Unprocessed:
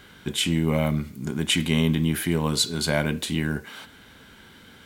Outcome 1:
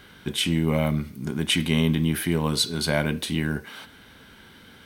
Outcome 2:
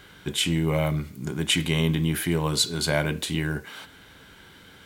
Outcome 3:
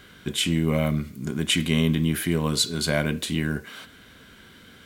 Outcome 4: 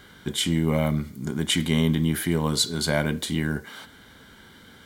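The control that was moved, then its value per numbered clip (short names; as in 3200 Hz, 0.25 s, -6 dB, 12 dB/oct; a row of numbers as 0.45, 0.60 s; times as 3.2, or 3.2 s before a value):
notch, frequency: 7200, 230, 860, 2600 Hz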